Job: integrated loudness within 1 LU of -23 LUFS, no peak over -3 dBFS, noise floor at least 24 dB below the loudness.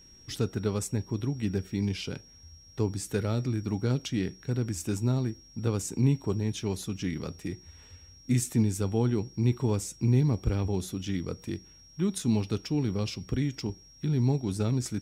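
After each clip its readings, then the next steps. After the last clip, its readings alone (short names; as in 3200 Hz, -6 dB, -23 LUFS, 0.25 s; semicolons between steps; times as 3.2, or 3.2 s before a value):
steady tone 5600 Hz; tone level -53 dBFS; loudness -30.0 LUFS; peak -13.0 dBFS; loudness target -23.0 LUFS
-> notch 5600 Hz, Q 30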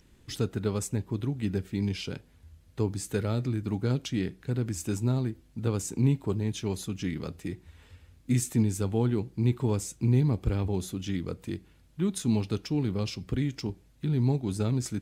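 steady tone none; loudness -30.0 LUFS; peak -13.5 dBFS; loudness target -23.0 LUFS
-> gain +7 dB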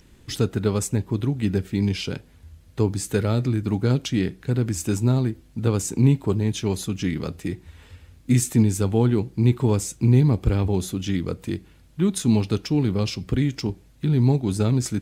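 loudness -23.0 LUFS; peak -6.5 dBFS; noise floor -52 dBFS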